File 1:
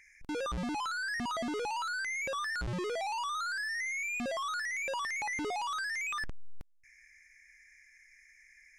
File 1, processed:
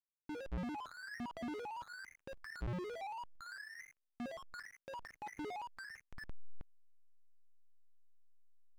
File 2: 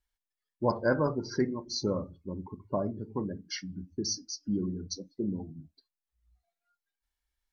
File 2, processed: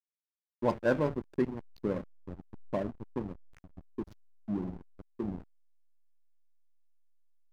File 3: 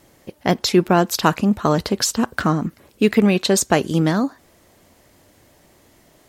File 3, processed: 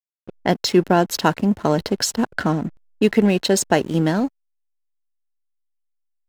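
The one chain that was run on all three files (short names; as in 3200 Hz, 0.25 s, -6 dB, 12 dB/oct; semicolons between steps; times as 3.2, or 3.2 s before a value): low-pass opened by the level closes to 1600 Hz, open at -16.5 dBFS; notch comb 1200 Hz; backlash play -30 dBFS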